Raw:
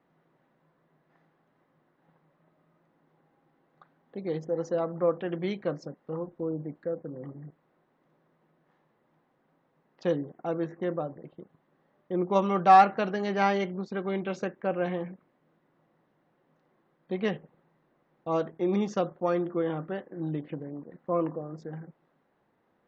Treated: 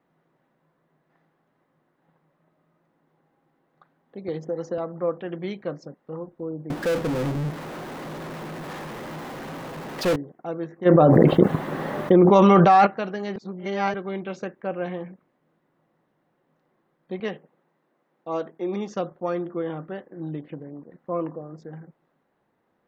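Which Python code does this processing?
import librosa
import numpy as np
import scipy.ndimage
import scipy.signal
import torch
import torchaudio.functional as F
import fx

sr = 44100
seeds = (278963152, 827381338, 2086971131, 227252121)

y = fx.band_squash(x, sr, depth_pct=100, at=(4.28, 4.78))
y = fx.power_curve(y, sr, exponent=0.35, at=(6.7, 10.16))
y = fx.env_flatten(y, sr, amount_pct=100, at=(10.85, 12.85), fade=0.02)
y = fx.highpass(y, sr, hz=210.0, slope=12, at=(17.2, 18.95))
y = fx.edit(y, sr, fx.reverse_span(start_s=13.36, length_s=0.58), tone=tone)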